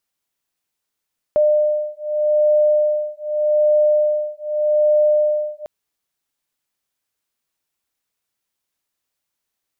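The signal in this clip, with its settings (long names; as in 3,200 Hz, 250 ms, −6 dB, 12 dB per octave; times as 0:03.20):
two tones that beat 602 Hz, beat 0.83 Hz, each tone −17 dBFS 4.30 s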